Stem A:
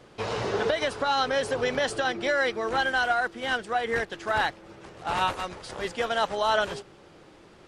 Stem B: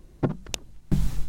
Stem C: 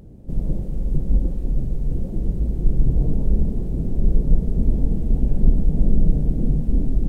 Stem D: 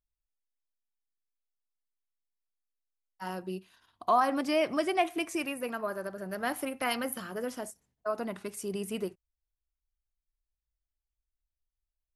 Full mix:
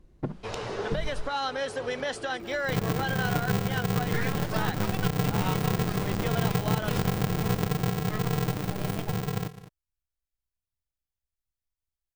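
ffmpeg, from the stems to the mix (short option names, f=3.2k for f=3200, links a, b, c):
-filter_complex "[0:a]adelay=250,volume=-5dB,asplit=2[a][b];[b]volume=-18dB[c];[1:a]lowpass=f=3.5k:p=1,volume=-7dB[d];[2:a]aeval=exprs='val(0)*sgn(sin(2*PI*150*n/s))':c=same,adelay=2400,volume=-6.5dB,afade=t=out:st=7.59:d=0.27:silence=0.421697,asplit=2[e][f];[f]volume=-15.5dB[g];[3:a]aeval=exprs='abs(val(0))':c=same,adelay=50,volume=-2dB[h];[c][g]amix=inputs=2:normalize=0,aecho=0:1:208:1[i];[a][d][e][h][i]amix=inputs=5:normalize=0,acompressor=threshold=-23dB:ratio=6"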